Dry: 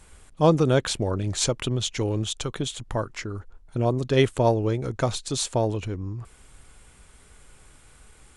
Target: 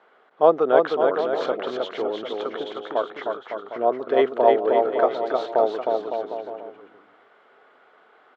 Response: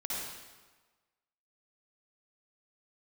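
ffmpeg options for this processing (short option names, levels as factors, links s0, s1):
-filter_complex "[0:a]highpass=f=300:w=0.5412,highpass=f=300:w=1.3066,equalizer=f=310:t=q:w=4:g=-5,equalizer=f=440:t=q:w=4:g=4,equalizer=f=690:t=q:w=4:g=9,equalizer=f=1300:t=q:w=4:g=6,equalizer=f=2500:t=q:w=4:g=-9,lowpass=f=2900:w=0.5412,lowpass=f=2900:w=1.3066,asplit=2[s0][s1];[s1]aecho=0:1:310|558|756.4|915.1|1042:0.631|0.398|0.251|0.158|0.1[s2];[s0][s2]amix=inputs=2:normalize=0"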